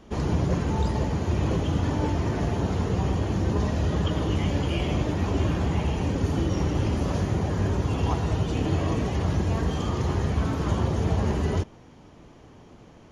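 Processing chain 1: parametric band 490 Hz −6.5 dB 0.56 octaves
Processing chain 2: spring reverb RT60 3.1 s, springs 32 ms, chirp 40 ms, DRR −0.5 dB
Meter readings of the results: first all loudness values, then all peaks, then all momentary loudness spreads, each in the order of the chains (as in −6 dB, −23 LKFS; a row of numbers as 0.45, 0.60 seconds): −26.5, −23.0 LKFS; −13.0, −8.5 dBFS; 2, 2 LU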